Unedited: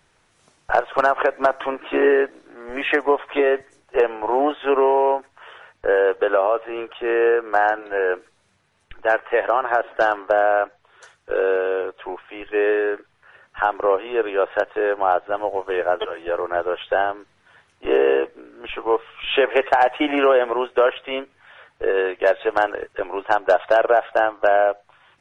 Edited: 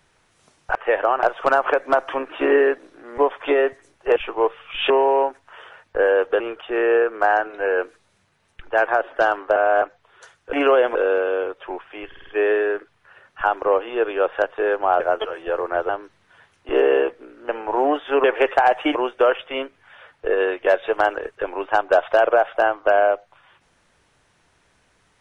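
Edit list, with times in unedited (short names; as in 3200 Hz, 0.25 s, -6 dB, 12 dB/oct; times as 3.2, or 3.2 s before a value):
2.7–3.06 cut
4.04–4.79 swap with 18.65–19.39
6.29–6.72 cut
9.2–9.68 move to 0.75
10.36–10.62 reverse
12.45 stutter 0.05 s, 5 plays
15.18–15.8 cut
16.69–17.05 cut
20.1–20.52 move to 11.33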